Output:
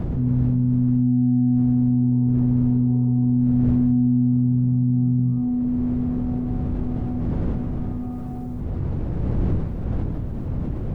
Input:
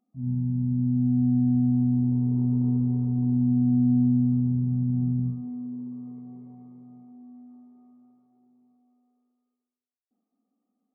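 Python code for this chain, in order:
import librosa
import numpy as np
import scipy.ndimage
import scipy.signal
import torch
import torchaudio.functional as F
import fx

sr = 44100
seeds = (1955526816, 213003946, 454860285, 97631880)

y = fx.dmg_wind(x, sr, seeds[0], corner_hz=150.0, level_db=-37.0)
y = fx.env_flatten(y, sr, amount_pct=70)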